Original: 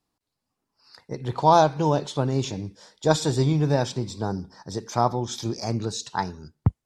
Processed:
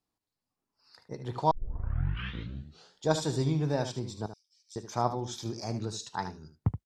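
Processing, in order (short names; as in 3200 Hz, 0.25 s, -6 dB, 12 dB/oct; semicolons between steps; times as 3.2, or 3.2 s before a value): 4.26–4.76 rippled Chebyshev high-pass 2200 Hz, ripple 6 dB; early reflections 19 ms -18 dB, 75 ms -10.5 dB; 1.51 tape start 1.56 s; gain -7.5 dB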